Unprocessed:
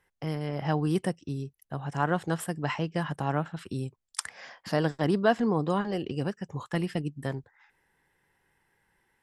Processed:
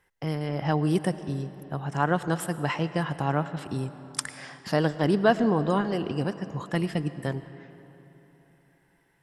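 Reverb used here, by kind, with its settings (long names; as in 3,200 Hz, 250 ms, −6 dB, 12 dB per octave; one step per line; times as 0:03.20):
comb and all-pass reverb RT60 3.5 s, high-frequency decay 0.65×, pre-delay 65 ms, DRR 13 dB
level +2.5 dB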